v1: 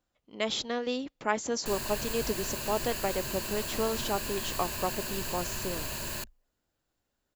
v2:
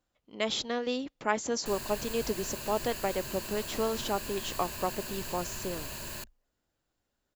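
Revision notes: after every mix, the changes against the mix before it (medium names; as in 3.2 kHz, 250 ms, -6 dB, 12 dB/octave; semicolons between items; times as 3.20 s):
background -4.0 dB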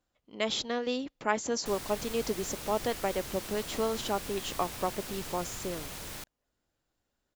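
background: remove rippled EQ curve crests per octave 1.4, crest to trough 10 dB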